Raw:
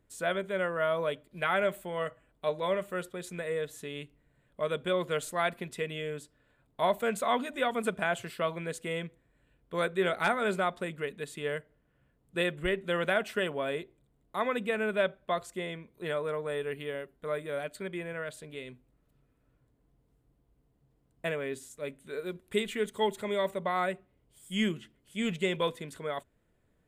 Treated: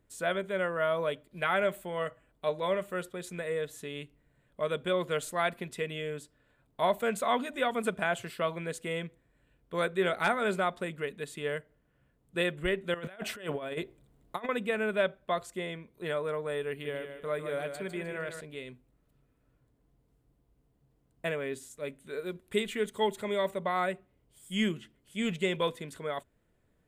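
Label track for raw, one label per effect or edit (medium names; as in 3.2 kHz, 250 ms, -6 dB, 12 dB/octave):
12.940000	14.490000	compressor with a negative ratio -36 dBFS, ratio -0.5
16.700000	18.410000	feedback delay 152 ms, feedback 36%, level -7.5 dB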